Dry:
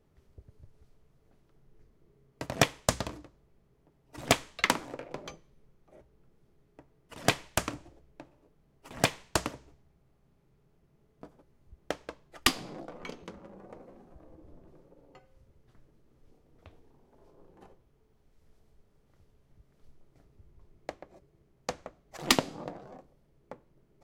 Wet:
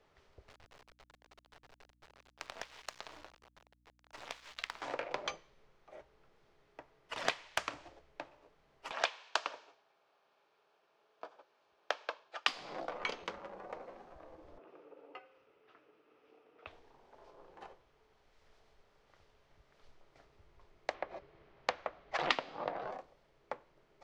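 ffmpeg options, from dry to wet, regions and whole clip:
-filter_complex "[0:a]asettb=1/sr,asplit=3[a][b][c];[a]atrim=end=0.484[d];[b]atrim=start=0.48:end=4.82,asetpts=PTS-STARTPTS,afade=t=in:d=0.004:c=qsin,afade=t=out:st=4.336:d=0.004:c=qsin,acompressor=threshold=-46dB:ratio=8:attack=3.2:release=140:knee=1:detection=peak,acrusher=bits=7:dc=4:mix=0:aa=0.000001,aeval=exprs='val(0)+0.000562*(sin(2*PI*60*n/s)+sin(2*PI*2*60*n/s)/2+sin(2*PI*3*60*n/s)/3+sin(2*PI*4*60*n/s)/4+sin(2*PI*5*60*n/s)/5)':c=same[e];[c]atrim=start=4.816[f];[d][e]acrossfade=d=0.004:c1=hsin:c2=qsin[g];[g][f]acrossfade=d=0.004:c1=qsin:c2=hsin,asettb=1/sr,asplit=3[h][i][j];[h]atrim=end=8.914[k];[i]atrim=start=8.91:end=12.48,asetpts=PTS-STARTPTS,afade=t=in:d=0.004:c=qsin,afade=t=out:st=3.566:d=0.004:c=qsin,highpass=450,lowpass=5.9k,bandreject=f=2k:w=7.3[l];[j]atrim=start=12.476[m];[k][l]acrossfade=d=0.004:c1=hsin:c2=qsin[n];[n][m]acrossfade=d=0.004:c1=qsin:c2=hsin,asettb=1/sr,asplit=3[o][p][q];[o]atrim=end=14.584[r];[p]atrim=start=14.58:end=16.67,asetpts=PTS-STARTPTS,afade=t=in:d=0.004:c=qsin,afade=t=out:st=2.086:d=0.004:c=qsin,flanger=delay=2.9:depth=3.8:regen=80:speed=1.7:shape=sinusoidal,highpass=190,equalizer=f=290:t=q:w=4:g=9,equalizer=f=440:t=q:w=4:g=10,equalizer=f=750:t=q:w=4:g=3,equalizer=f=1.3k:t=q:w=4:g=8,equalizer=f=2.6k:t=q:w=4:g=9,equalizer=f=4.3k:t=q:w=4:g=-5,lowpass=f=5.4k:w=0.5412,lowpass=f=5.4k:w=1.3066[s];[q]atrim=start=16.666[t];[r][s]acrossfade=d=0.004:c1=hsin:c2=qsin[u];[u][t]acrossfade=d=0.004:c1=qsin:c2=hsin,asettb=1/sr,asplit=3[v][w][x];[v]atrim=end=20.944[y];[w]atrim=start=20.94:end=22.91,asetpts=PTS-STARTPTS,afade=t=in:d=0.004:c=qsin,afade=t=out:st=1.966:d=0.004:c=qsin,lowpass=3.6k,acontrast=61[z];[x]atrim=start=22.906[aa];[y][z]acrossfade=d=0.004:c1=hsin:c2=qsin[ab];[ab][aa]acrossfade=d=0.004:c1=qsin:c2=hsin,equalizer=f=200:w=0.31:g=-4,acompressor=threshold=-38dB:ratio=6,acrossover=split=470 5800:gain=0.178 1 0.0891[ac][ad][ae];[ac][ad][ae]amix=inputs=3:normalize=0,volume=9dB"

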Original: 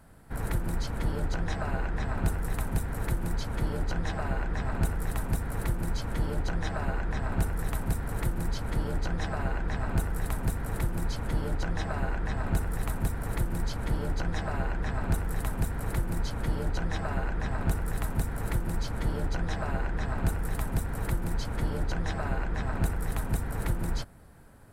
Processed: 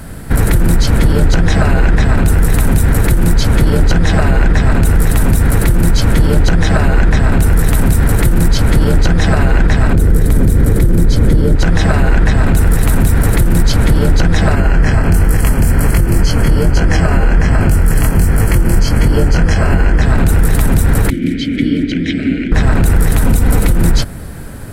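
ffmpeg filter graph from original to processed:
-filter_complex "[0:a]asettb=1/sr,asplit=3[a][b][c];[a]atrim=end=9.934[d];[b]atrim=start=9.93:end=11.56,asetpts=PTS-STARTPTS,afade=t=in:d=0.004:c=qsin,afade=t=out:st=1.626:d=0.004:c=qsin,lowshelf=f=600:t=q:w=1.5:g=6.5,bandreject=f=2.7k:w=9.9[e];[c]atrim=start=11.556[f];[d][e]acrossfade=d=0.004:c1=hsin:c2=qsin[g];[g][f]acrossfade=d=0.004:c1=qsin:c2=hsin,asettb=1/sr,asplit=3[h][i][j];[h]atrim=end=14.554[k];[i]atrim=start=14.55:end=20.02,asetpts=PTS-STARTPTS,afade=t=in:d=0.004:c=qsin,afade=t=out:st=5.466:d=0.004:c=qsin,flanger=delay=20:depth=6.5:speed=1.3,asuperstop=centerf=3700:order=12:qfactor=5.2[l];[j]atrim=start=20.016[m];[k][l]acrossfade=d=0.004:c1=hsin:c2=qsin[n];[n][m]acrossfade=d=0.004:c1=qsin:c2=hsin,asettb=1/sr,asplit=3[o][p][q];[o]atrim=end=21.104[r];[p]atrim=start=21.1:end=22.52,asetpts=PTS-STARTPTS,afade=t=in:d=0.004:c=qsin,afade=t=out:st=1.416:d=0.004:c=qsin,equalizer=f=1.1k:w=3:g=-11,acontrast=80,asplit=3[s][t][u];[s]bandpass=f=270:t=q:w=8,volume=0dB[v];[t]bandpass=f=2.29k:t=q:w=8,volume=-6dB[w];[u]bandpass=f=3.01k:t=q:w=8,volume=-9dB[x];[v][w][x]amix=inputs=3:normalize=0[y];[q]atrim=start=22.516[z];[r][y]acrossfade=d=0.004:c1=hsin:c2=qsin[aa];[aa][z]acrossfade=d=0.004:c1=qsin:c2=hsin,asettb=1/sr,asplit=3[ab][ac][ad];[ab]atrim=end=23.264[ae];[ac]atrim=start=23.26:end=23.74,asetpts=PTS-STARTPTS,afade=t=in:d=0.004:c=qsin,afade=t=out:st=0.476:d=0.004:c=qsin,equalizer=f=1.7k:t=o:w=0.22:g=-6.5,aecho=1:1:4:0.33,atrim=end_sample=21168[af];[ad]atrim=start=23.736[ag];[ae][af]acrossfade=d=0.004:c1=hsin:c2=qsin[ah];[ah][ag]acrossfade=d=0.004:c1=qsin:c2=hsin,equalizer=f=910:w=0.98:g=-7.5,acompressor=threshold=-27dB:ratio=6,alimiter=level_in=28dB:limit=-1dB:release=50:level=0:latency=1,volume=-1dB"

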